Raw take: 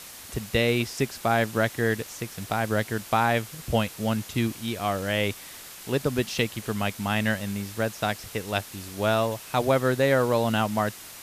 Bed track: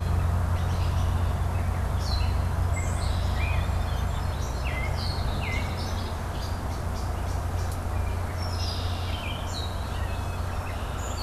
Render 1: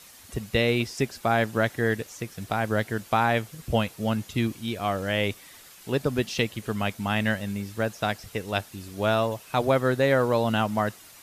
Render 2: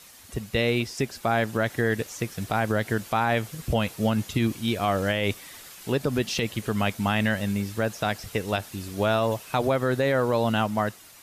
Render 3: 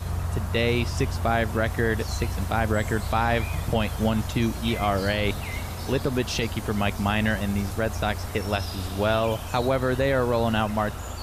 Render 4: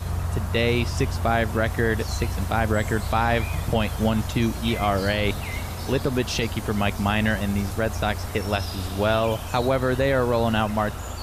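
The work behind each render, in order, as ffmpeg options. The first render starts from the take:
-af "afftdn=nr=8:nf=-43"
-af "dynaudnorm=f=450:g=7:m=1.78,alimiter=limit=0.211:level=0:latency=1:release=74"
-filter_complex "[1:a]volume=0.668[s0];[0:a][s0]amix=inputs=2:normalize=0"
-af "volume=1.19"

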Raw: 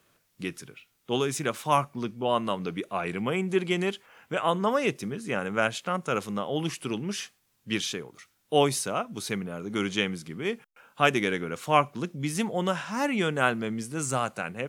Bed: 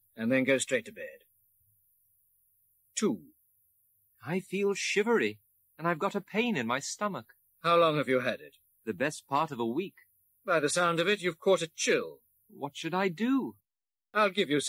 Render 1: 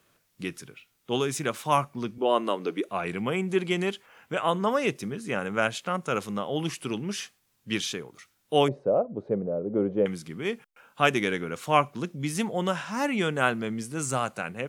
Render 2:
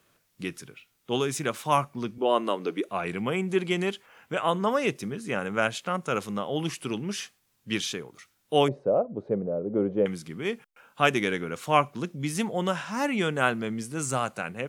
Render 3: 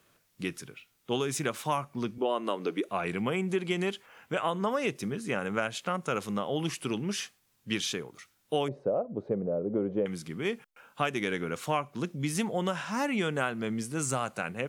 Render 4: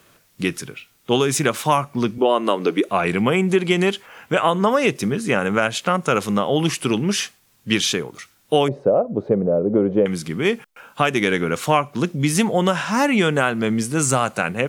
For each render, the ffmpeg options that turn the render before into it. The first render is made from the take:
-filter_complex "[0:a]asettb=1/sr,asplit=3[s0][s1][s2];[s0]atrim=end=2.184[s3];[s1]atrim=start=2.18:end=2.89,asetpts=PTS-STARTPTS,afade=t=in:d=0.004:c=qsin,afade=t=out:st=0.706:d=0.004:c=qsin,highpass=f=330:t=q:w=1.9[s4];[s2]atrim=start=2.886[s5];[s3][s4]acrossfade=d=0.004:c1=hsin:c2=qsin[s6];[s6][s5]acrossfade=d=0.004:c1=qsin:c2=hsin,asettb=1/sr,asplit=3[s7][s8][s9];[s7]atrim=end=8.684[s10];[s8]atrim=start=8.68:end=10.06,asetpts=PTS-STARTPTS,afade=t=in:d=0.004:c=qsin,afade=t=out:st=1.376:d=0.004:c=qsin,lowpass=f=550:t=q:w=4.8[s11];[s9]atrim=start=10.056[s12];[s10][s11]acrossfade=d=0.004:c1=hsin:c2=qsin[s13];[s13][s12]acrossfade=d=0.004:c1=qsin:c2=hsin"
-af anull
-af "acompressor=threshold=0.0562:ratio=6"
-af "volume=3.98,alimiter=limit=0.708:level=0:latency=1"

